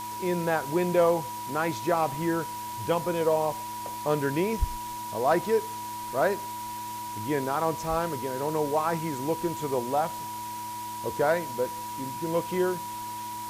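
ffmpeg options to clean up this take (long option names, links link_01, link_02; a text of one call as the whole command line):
ffmpeg -i in.wav -af "bandreject=frequency=109.5:width_type=h:width=4,bandreject=frequency=219:width_type=h:width=4,bandreject=frequency=328.5:width_type=h:width=4,bandreject=frequency=970:width=30,afwtdn=0.0071" out.wav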